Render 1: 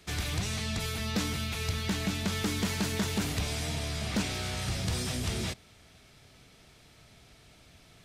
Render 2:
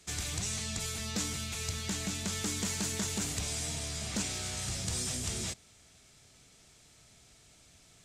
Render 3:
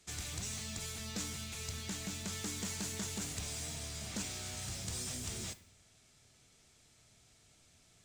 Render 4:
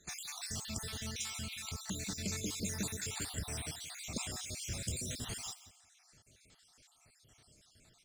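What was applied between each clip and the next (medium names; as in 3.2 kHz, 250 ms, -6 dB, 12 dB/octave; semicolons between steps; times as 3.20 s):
peaking EQ 7.4 kHz +13.5 dB 0.9 oct; trim -6 dB
on a send at -12 dB: integer overflow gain 32 dB + reverberation RT60 0.60 s, pre-delay 8 ms; on the sum: trim -6 dB
random holes in the spectrogram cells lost 58%; delay 173 ms -16 dB; trim +4 dB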